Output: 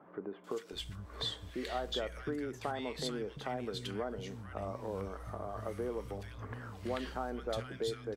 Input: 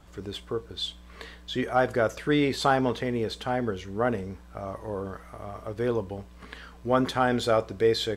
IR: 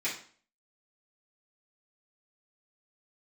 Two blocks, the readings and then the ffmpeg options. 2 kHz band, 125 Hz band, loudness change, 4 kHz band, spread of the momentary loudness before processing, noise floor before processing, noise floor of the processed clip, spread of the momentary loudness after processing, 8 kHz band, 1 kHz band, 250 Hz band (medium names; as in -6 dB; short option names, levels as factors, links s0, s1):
-13.5 dB, -9.5 dB, -12.5 dB, -7.5 dB, 17 LU, -49 dBFS, -53 dBFS, 6 LU, -8.0 dB, -13.0 dB, -12.5 dB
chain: -filter_complex "[0:a]acompressor=threshold=0.0126:ratio=5,acrossover=split=190|1600[s0][s1][s2];[s2]adelay=440[s3];[s0]adelay=720[s4];[s4][s1][s3]amix=inputs=3:normalize=0,volume=1.33"